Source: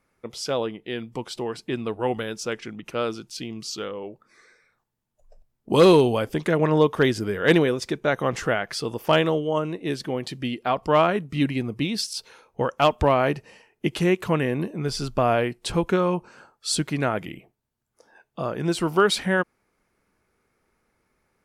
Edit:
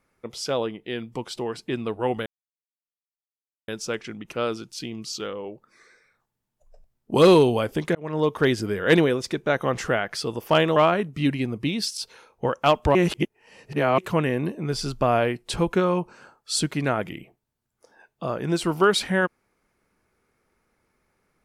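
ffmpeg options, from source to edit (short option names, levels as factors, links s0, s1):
-filter_complex "[0:a]asplit=6[s0][s1][s2][s3][s4][s5];[s0]atrim=end=2.26,asetpts=PTS-STARTPTS,afade=t=out:st=2.256:d=0.004:c=hsin,apad=pad_dur=1.42[s6];[s1]atrim=start=2.26:end=6.53,asetpts=PTS-STARTPTS,afade=t=in:d=0.004:c=hsin,afade=t=out:st=4.266:d=0.004:c=hsin[s7];[s2]atrim=start=6.53:end=9.342,asetpts=PTS-STARTPTS,afade=t=in:d=0.67:c=qsin[s8];[s3]atrim=start=10.918:end=13.112[s9];[s4]atrim=start=13.108:end=14.142,asetpts=PTS-STARTPTS,areverse[s10];[s5]atrim=start=14.138[s11];[s6][s7][s8]concat=n=3:v=0:a=1[s12];[s12][s9]acrossfade=d=0.004:c1=hsin:c2=hsin[s13];[s13][s10]acrossfade=d=0.004:c1=hsin:c2=hsin[s14];[s14][s11]acrossfade=d=0.004:c1=hsin:c2=hsin"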